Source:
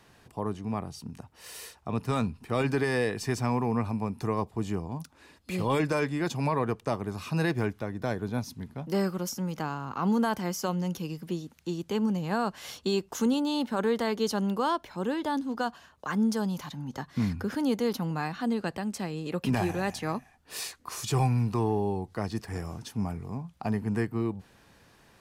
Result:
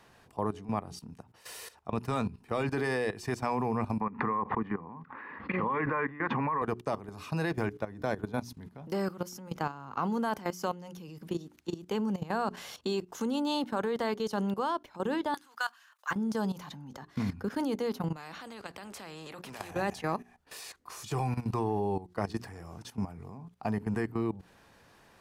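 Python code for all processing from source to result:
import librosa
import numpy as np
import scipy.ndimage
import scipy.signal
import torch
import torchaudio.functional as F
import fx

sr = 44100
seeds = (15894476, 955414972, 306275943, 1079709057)

y = fx.chain(x, sr, fx.cabinet(low_hz=180.0, low_slope=12, high_hz=2100.0, hz=(230.0, 340.0, 650.0, 1100.0, 1900.0), db=(4, -5, -9, 9, 9)),
    fx.pre_swell(db_per_s=42.0), at=(4.0, 6.62))
y = fx.chain(y, sr, fx.highpass_res(hz=1500.0, q=1.5),
    fx.high_shelf(hz=7600.0, db=11.5), at=(15.34, 16.11))
y = fx.chain(y, sr, fx.highpass(hz=96.0, slope=6),
    fx.high_shelf(hz=2400.0, db=-6.0),
    fx.spectral_comp(ratio=2.0), at=(18.16, 19.71))
y = fx.peak_eq(y, sr, hz=850.0, db=4.0, octaves=2.6)
y = fx.hum_notches(y, sr, base_hz=60, count=7)
y = fx.level_steps(y, sr, step_db=15)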